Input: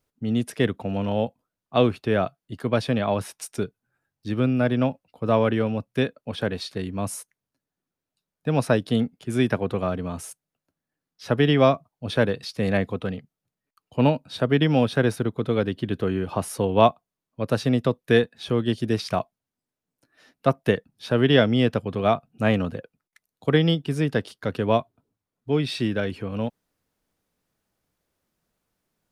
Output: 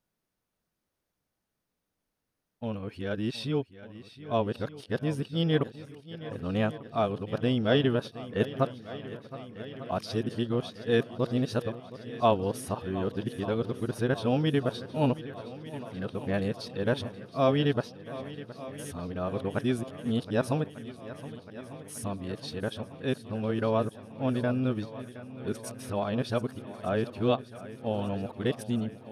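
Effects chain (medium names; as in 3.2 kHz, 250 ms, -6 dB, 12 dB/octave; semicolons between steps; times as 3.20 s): reverse the whole clip; band-stop 7.4 kHz, Q 11; shuffle delay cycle 1197 ms, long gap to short 1.5:1, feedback 66%, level -16 dB; dynamic bell 2.1 kHz, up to -6 dB, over -47 dBFS, Q 3.3; trim -6.5 dB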